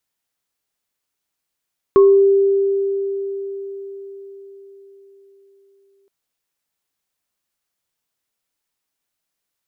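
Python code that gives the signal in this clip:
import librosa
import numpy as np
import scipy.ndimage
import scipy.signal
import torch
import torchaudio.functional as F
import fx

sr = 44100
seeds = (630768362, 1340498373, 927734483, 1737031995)

y = fx.additive_free(sr, length_s=4.12, hz=394.0, level_db=-6.0, upper_db=(-10,), decay_s=4.91, upper_decays_s=(0.36,), upper_hz=(1090.0,))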